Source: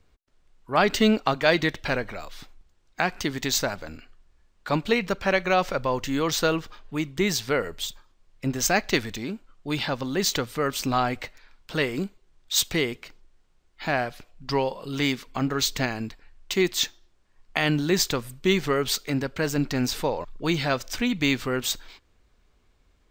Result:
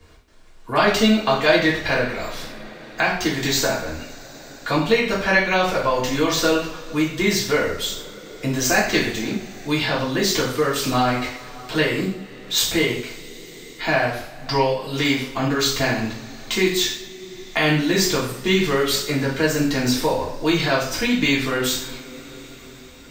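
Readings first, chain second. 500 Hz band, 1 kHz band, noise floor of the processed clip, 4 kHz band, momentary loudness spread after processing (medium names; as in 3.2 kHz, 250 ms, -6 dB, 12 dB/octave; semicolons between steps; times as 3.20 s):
+5.5 dB, +4.5 dB, -41 dBFS, +5.5 dB, 16 LU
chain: two-slope reverb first 0.53 s, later 4.6 s, from -28 dB, DRR -7.5 dB; three bands compressed up and down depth 40%; trim -2.5 dB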